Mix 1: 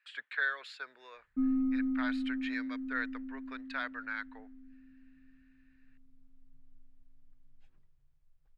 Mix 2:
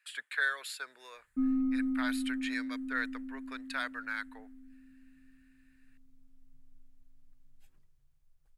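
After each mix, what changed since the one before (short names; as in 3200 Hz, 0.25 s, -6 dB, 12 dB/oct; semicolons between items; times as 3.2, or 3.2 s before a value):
master: remove air absorption 180 m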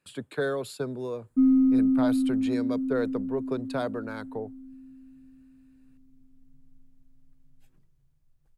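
speech: remove resonant high-pass 1800 Hz, resonance Q 3.8; background: add bell 200 Hz +10.5 dB 2.9 oct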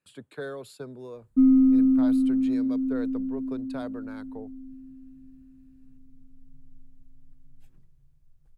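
speech -7.5 dB; background: add low shelf 170 Hz +8 dB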